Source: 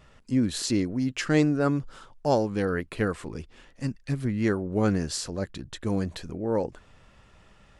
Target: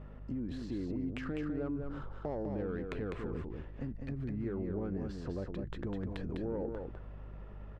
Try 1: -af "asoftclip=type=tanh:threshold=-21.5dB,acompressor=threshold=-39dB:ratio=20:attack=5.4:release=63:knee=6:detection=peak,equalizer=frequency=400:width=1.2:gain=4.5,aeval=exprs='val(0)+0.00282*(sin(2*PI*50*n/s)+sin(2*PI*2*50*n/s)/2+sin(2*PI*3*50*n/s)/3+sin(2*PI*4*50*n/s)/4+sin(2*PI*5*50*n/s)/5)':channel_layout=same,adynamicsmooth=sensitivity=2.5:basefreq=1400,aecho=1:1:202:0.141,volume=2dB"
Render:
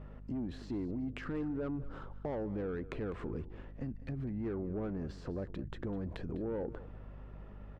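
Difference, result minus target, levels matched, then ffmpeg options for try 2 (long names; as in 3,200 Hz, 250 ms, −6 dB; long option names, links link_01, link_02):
soft clipping: distortion +12 dB; echo-to-direct −12 dB
-af "asoftclip=type=tanh:threshold=-11.5dB,acompressor=threshold=-39dB:ratio=20:attack=5.4:release=63:knee=6:detection=peak,equalizer=frequency=400:width=1.2:gain=4.5,aeval=exprs='val(0)+0.00282*(sin(2*PI*50*n/s)+sin(2*PI*2*50*n/s)/2+sin(2*PI*3*50*n/s)/3+sin(2*PI*4*50*n/s)/4+sin(2*PI*5*50*n/s)/5)':channel_layout=same,adynamicsmooth=sensitivity=2.5:basefreq=1400,aecho=1:1:202:0.562,volume=2dB"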